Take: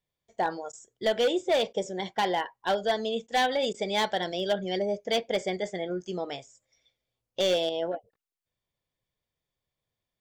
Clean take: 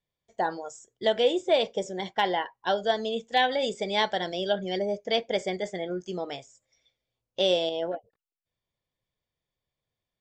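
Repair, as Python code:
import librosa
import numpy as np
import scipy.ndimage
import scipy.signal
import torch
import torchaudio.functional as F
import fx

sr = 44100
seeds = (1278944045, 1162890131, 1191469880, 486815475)

y = fx.fix_declip(x, sr, threshold_db=-19.5)
y = fx.fix_interpolate(y, sr, at_s=(0.72, 1.73, 3.27, 3.73), length_ms=10.0)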